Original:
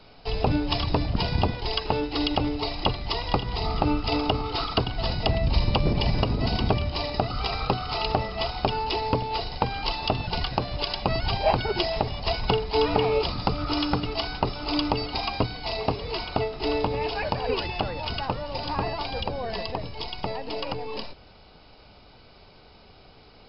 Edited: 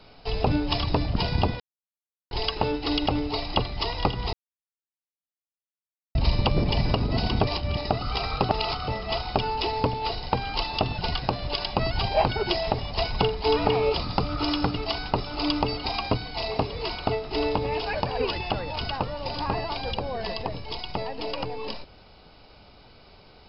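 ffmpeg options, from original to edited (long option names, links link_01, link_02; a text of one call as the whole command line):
ffmpeg -i in.wav -filter_complex "[0:a]asplit=8[link_01][link_02][link_03][link_04][link_05][link_06][link_07][link_08];[link_01]atrim=end=1.6,asetpts=PTS-STARTPTS,afade=type=out:start_time=1.596:duration=0.004:curve=hsin,apad=pad_dur=0.71[link_09];[link_02]atrim=start=1.6:end=3.62,asetpts=PTS-STARTPTS,afade=type=in:duration=0.004:curve=hsin,afade=type=out:start_time=2.016:duration=0.004:curve=hsin[link_10];[link_03]atrim=start=3.62:end=5.44,asetpts=PTS-STARTPTS,volume=0[link_11];[link_04]atrim=start=5.44:end=6.762,asetpts=PTS-STARTPTS,afade=type=in:duration=0.004:curve=hsin[link_12];[link_05]atrim=start=6.758:end=7.062,asetpts=PTS-STARTPTS,areverse[link_13];[link_06]atrim=start=7.058:end=7.782[link_14];[link_07]atrim=start=7.778:end=8.172,asetpts=PTS-STARTPTS,areverse[link_15];[link_08]atrim=start=8.168[link_16];[link_09][link_10][link_11][link_12]concat=n=4:v=0:a=1[link_17];[link_17][link_13]acrossfade=duration=0.004:curve1=hsin:curve2=hsin[link_18];[link_18][link_14]acrossfade=duration=0.004:curve1=hsin:curve2=hsin[link_19];[link_19][link_15]acrossfade=duration=0.004:curve1=hsin:curve2=hsin[link_20];[link_20][link_16]acrossfade=duration=0.004:curve1=hsin:curve2=hsin" out.wav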